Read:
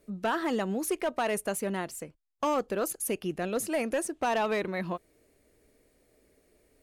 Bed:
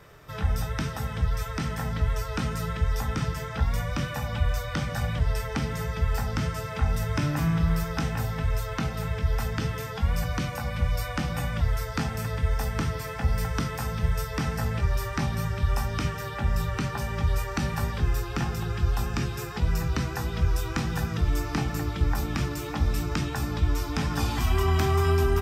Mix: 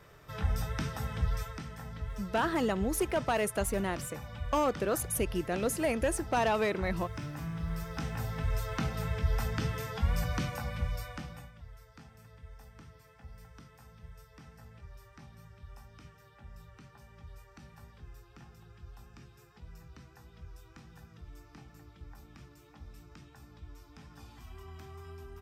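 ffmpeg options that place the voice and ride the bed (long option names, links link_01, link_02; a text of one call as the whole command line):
ffmpeg -i stem1.wav -i stem2.wav -filter_complex "[0:a]adelay=2100,volume=-0.5dB[link_01];[1:a]volume=4.5dB,afade=type=out:start_time=1.35:duration=0.28:silence=0.375837,afade=type=in:start_time=7.55:duration=1.2:silence=0.334965,afade=type=out:start_time=10.4:duration=1.13:silence=0.0891251[link_02];[link_01][link_02]amix=inputs=2:normalize=0" out.wav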